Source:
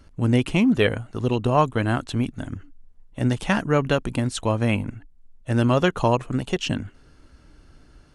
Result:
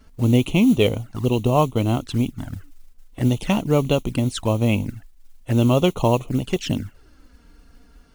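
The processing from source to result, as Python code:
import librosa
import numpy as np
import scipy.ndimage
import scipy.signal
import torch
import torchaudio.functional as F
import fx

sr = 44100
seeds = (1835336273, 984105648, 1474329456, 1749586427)

y = fx.mod_noise(x, sr, seeds[0], snr_db=23)
y = fx.env_flanger(y, sr, rest_ms=4.9, full_db=-20.0)
y = y * librosa.db_to_amplitude(3.0)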